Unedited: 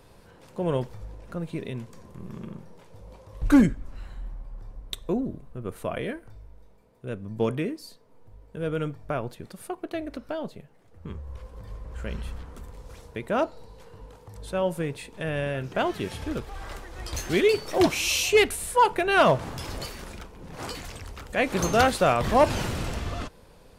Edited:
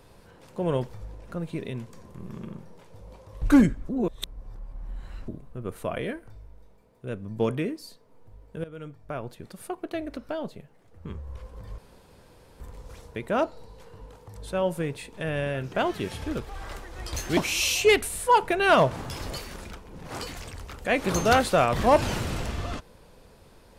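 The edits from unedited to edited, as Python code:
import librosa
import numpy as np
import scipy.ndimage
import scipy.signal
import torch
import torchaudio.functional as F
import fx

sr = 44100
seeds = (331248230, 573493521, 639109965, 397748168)

y = fx.edit(x, sr, fx.reverse_span(start_s=3.89, length_s=1.39),
    fx.fade_in_from(start_s=8.64, length_s=0.99, floor_db=-17.5),
    fx.room_tone_fill(start_s=11.78, length_s=0.82),
    fx.cut(start_s=17.37, length_s=0.48), tone=tone)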